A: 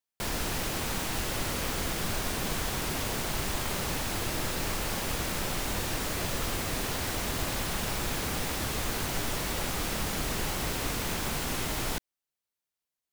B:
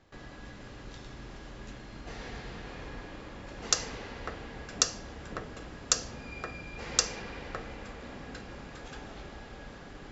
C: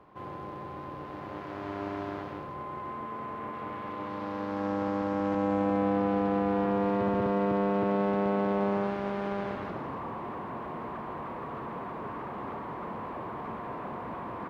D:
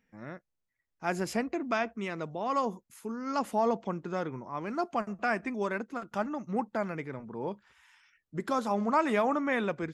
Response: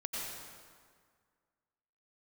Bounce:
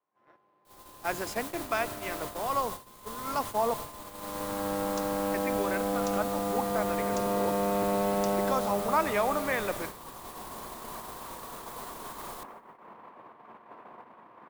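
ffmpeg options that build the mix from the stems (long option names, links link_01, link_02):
-filter_complex "[0:a]aexciter=amount=2.3:drive=4.6:freq=3200,adelay=450,volume=-17dB,asplit=2[link_01][link_02];[link_02]volume=-15.5dB[link_03];[1:a]adelay=1250,volume=-18.5dB[link_04];[2:a]highpass=frequency=530:poles=1,volume=-1dB,asplit=2[link_05][link_06];[link_06]volume=-8dB[link_07];[3:a]highpass=450,volume=-0.5dB,asplit=3[link_08][link_09][link_10];[link_08]atrim=end=3.74,asetpts=PTS-STARTPTS,afade=type=out:start_time=3.736:duration=0.004:curve=hsin[link_11];[link_09]atrim=start=3.74:end=5.34,asetpts=PTS-STARTPTS,volume=0[link_12];[link_10]atrim=start=5.34,asetpts=PTS-STARTPTS,afade=type=in:duration=0.004:curve=hsin[link_13];[link_11][link_12][link_13]concat=n=3:v=0:a=1,asplit=3[link_14][link_15][link_16];[link_15]volume=-15.5dB[link_17];[link_16]apad=whole_len=639242[link_18];[link_05][link_18]sidechaincompress=threshold=-32dB:ratio=5:attack=6.4:release=1160[link_19];[4:a]atrim=start_sample=2205[link_20];[link_03][link_07][link_17]amix=inputs=3:normalize=0[link_21];[link_21][link_20]afir=irnorm=-1:irlink=0[link_22];[link_01][link_04][link_19][link_14][link_22]amix=inputs=5:normalize=0,agate=range=-27dB:threshold=-36dB:ratio=16:detection=peak,adynamicequalizer=threshold=0.00355:dfrequency=120:dqfactor=0.84:tfrequency=120:tqfactor=0.84:attack=5:release=100:ratio=0.375:range=3:mode=boostabove:tftype=bell"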